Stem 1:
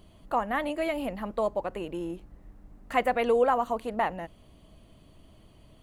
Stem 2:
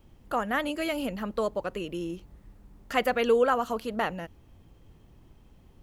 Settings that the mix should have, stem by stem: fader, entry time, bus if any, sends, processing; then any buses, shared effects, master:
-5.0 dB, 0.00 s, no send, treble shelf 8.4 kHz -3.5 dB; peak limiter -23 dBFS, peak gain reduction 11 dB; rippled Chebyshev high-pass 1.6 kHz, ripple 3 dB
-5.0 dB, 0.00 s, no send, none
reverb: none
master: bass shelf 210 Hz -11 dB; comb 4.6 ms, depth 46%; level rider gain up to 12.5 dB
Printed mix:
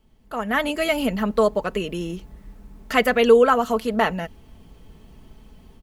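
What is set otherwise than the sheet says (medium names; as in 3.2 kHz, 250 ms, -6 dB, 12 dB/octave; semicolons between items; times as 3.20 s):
stem 1 -5.0 dB -> -12.0 dB; master: missing bass shelf 210 Hz -11 dB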